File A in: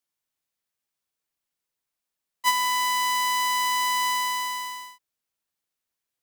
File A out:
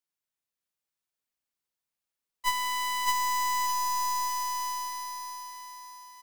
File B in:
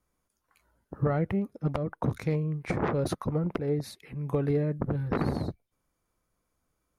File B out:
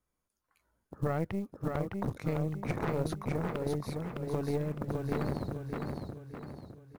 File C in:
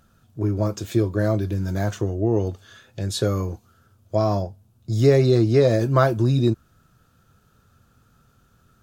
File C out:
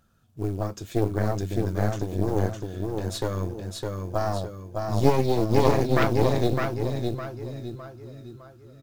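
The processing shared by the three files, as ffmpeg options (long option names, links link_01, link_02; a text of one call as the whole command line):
ffmpeg -i in.wav -af "acrusher=bits=8:mode=log:mix=0:aa=0.000001,aecho=1:1:609|1218|1827|2436|3045|3654:0.708|0.311|0.137|0.0603|0.0265|0.0117,aeval=exprs='0.944*(cos(1*acos(clip(val(0)/0.944,-1,1)))-cos(1*PI/2))+0.422*(cos(4*acos(clip(val(0)/0.944,-1,1)))-cos(4*PI/2))':channel_layout=same,volume=-6.5dB" out.wav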